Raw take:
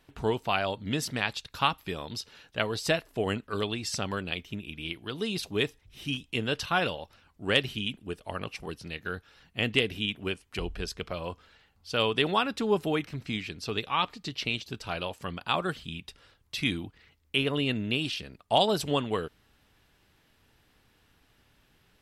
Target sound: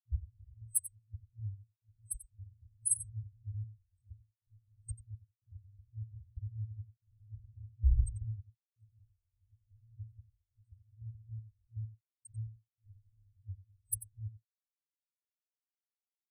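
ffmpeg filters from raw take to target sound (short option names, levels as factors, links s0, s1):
-af "asetrate=59535,aresample=44100,afftfilt=real='re*gte(hypot(re,im),0.0316)':imag='im*gte(hypot(re,im),0.0316)':win_size=1024:overlap=0.75,aecho=1:1:91:0.188,afftfilt=real='re*(1-between(b*sr/4096,110,8200))':imag='im*(1-between(b*sr/4096,110,8200))':win_size=4096:overlap=0.75,volume=4.73"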